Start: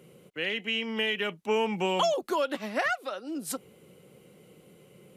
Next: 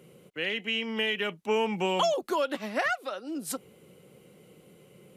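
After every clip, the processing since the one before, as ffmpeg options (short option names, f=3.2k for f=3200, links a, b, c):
-af anull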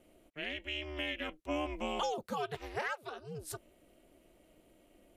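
-af "aeval=exprs='val(0)*sin(2*PI*150*n/s)':c=same,volume=-6dB"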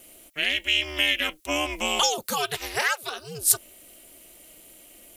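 -af "crystalizer=i=10:c=0,volume=4.5dB"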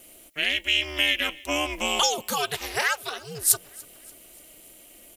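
-af "aecho=1:1:290|580|870|1160:0.0668|0.0361|0.0195|0.0105"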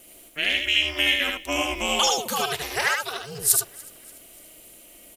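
-af "aecho=1:1:76:0.668"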